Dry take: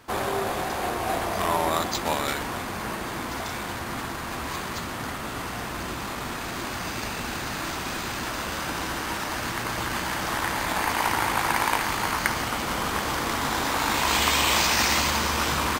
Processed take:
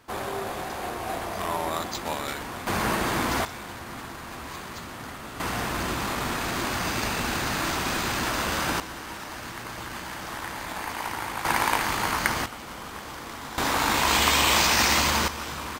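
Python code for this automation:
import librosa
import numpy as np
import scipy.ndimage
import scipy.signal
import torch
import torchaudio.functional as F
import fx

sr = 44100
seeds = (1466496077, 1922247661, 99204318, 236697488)

y = fx.gain(x, sr, db=fx.steps((0.0, -4.5), (2.67, 6.0), (3.45, -6.0), (5.4, 3.5), (8.8, -7.5), (11.45, 0.0), (12.46, -11.0), (13.58, 1.0), (15.28, -9.0)))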